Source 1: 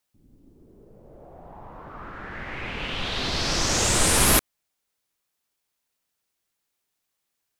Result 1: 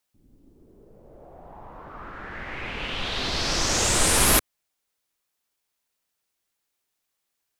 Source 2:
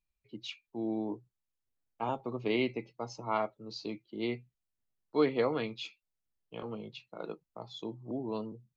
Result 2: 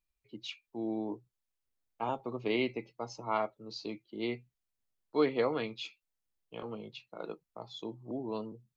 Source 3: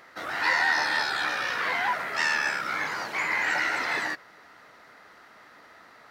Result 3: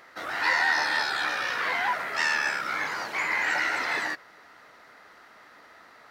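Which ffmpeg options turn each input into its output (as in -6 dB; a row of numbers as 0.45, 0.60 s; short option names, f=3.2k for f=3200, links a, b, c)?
-af "equalizer=f=140:t=o:w=1.8:g=-3"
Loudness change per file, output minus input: 0.0, -0.5, 0.0 LU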